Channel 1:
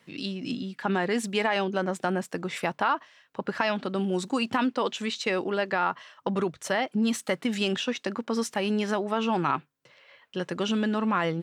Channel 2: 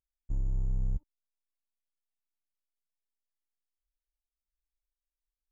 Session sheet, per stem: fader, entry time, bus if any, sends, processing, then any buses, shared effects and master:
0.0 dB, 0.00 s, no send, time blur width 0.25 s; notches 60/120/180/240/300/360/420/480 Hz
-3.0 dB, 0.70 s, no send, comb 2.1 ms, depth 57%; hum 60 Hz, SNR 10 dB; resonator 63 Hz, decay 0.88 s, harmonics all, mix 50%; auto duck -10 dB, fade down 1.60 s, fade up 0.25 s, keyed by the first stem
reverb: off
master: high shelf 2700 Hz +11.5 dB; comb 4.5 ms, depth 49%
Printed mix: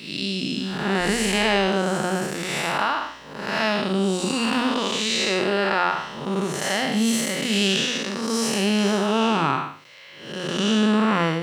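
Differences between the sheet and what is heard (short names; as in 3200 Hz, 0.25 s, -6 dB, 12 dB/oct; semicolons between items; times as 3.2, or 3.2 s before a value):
stem 1 0.0 dB -> +8.5 dB; master: missing comb 4.5 ms, depth 49%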